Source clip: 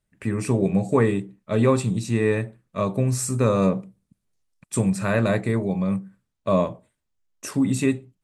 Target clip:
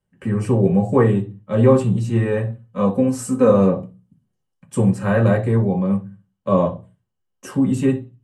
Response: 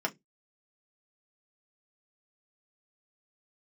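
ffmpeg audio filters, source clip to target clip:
-filter_complex "[0:a]asettb=1/sr,asplit=3[a][b][c];[a]atrim=end=2.454[d];[b]atrim=start=2.45:end=3.51,asetpts=PTS-STARTPTS,afade=t=in:d=0.004:c=qsin,afade=t=out:st=1.056:d=0.004:c=qsin,aecho=1:1:4:0.67,atrim=end_sample=46746[e];[c]atrim=start=3.506[f];[d][e]acrossfade=d=0.004:c1=hsin:c2=qsin[g];[g][f]acrossfade=d=0.004:c1=qsin:c2=hsin[h];[1:a]atrim=start_sample=2205,asetrate=24255,aresample=44100[i];[h][i]afir=irnorm=-1:irlink=0,volume=-7.5dB"

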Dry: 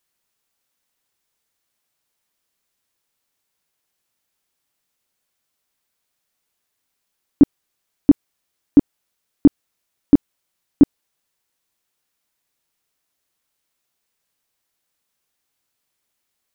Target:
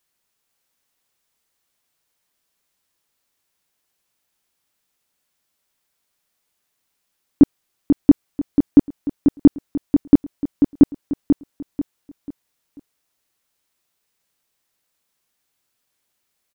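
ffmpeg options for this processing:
-af "aecho=1:1:490|980|1470|1960:0.473|0.17|0.0613|0.0221,volume=1dB"

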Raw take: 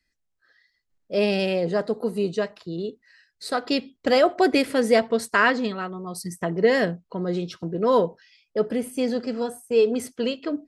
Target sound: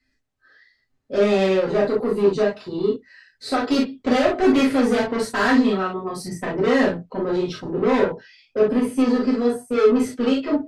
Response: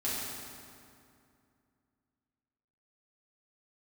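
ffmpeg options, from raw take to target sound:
-filter_complex "[0:a]asoftclip=type=tanh:threshold=-24dB,aemphasis=mode=reproduction:type=50kf[a];[1:a]atrim=start_sample=2205,atrim=end_sample=3087[b];[a][b]afir=irnorm=-1:irlink=0,volume=6dB"

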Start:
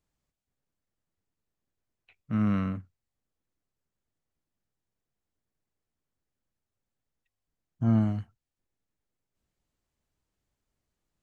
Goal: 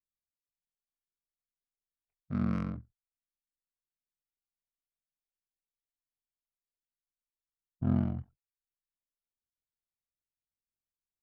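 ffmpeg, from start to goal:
-af "agate=range=-18dB:threshold=-50dB:ratio=16:detection=peak,aeval=exprs='val(0)*sin(2*PI*22*n/s)':c=same,adynamicsmooth=sensitivity=5.5:basefreq=980,volume=-2dB"

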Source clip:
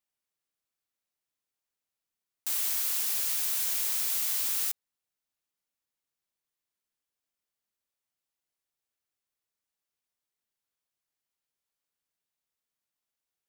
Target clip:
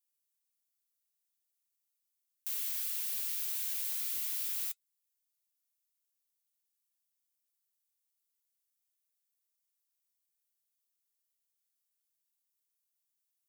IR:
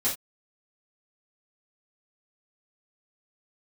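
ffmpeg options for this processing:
-filter_complex "[0:a]flanger=delay=4.1:depth=5.8:regen=68:speed=0.84:shape=triangular,acrossover=split=3600[a][b];[b]acompressor=threshold=-45dB:ratio=4:attack=1:release=60[c];[a][c]amix=inputs=2:normalize=0,aderivative,volume=6.5dB"

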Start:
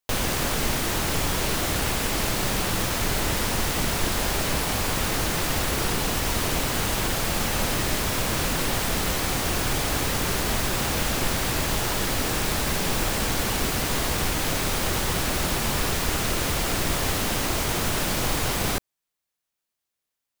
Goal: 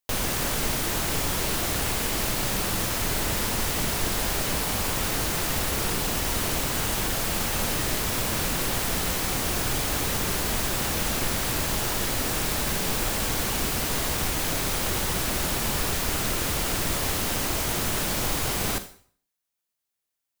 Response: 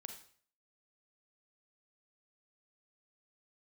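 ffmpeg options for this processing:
-filter_complex "[0:a]asplit=2[a][b];[1:a]atrim=start_sample=2205,highshelf=f=6.2k:g=7.5[c];[b][c]afir=irnorm=-1:irlink=0,volume=5dB[d];[a][d]amix=inputs=2:normalize=0,volume=-8.5dB"

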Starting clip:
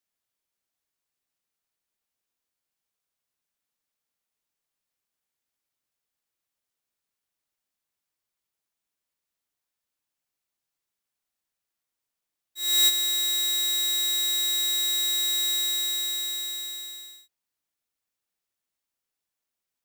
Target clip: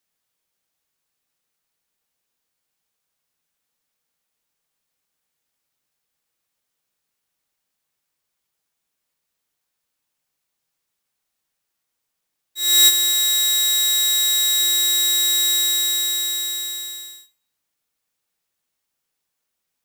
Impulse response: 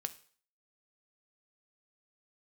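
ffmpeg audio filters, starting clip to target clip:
-filter_complex "[0:a]asettb=1/sr,asplit=3[a][b][c];[a]atrim=end=13.124[d];[b]atrim=start=13.12:end=14.6,asetpts=PTS-STARTPTS,afade=t=in:d=0.004:c=qsin,afade=t=out:st=1.476:d=0.004:c=qsin,highpass=f=380:w=0.5412,highpass=f=380:w=1.3066[e];[c]atrim=start=14.596[f];[d][e]acrossfade=d=0.004:c1=hsin:c2=qsin[g];[g][f]acrossfade=d=0.004:c1=qsin:c2=hsin[h];[1:a]atrim=start_sample=2205[i];[h][i]afir=irnorm=-1:irlink=0,volume=8.5dB"

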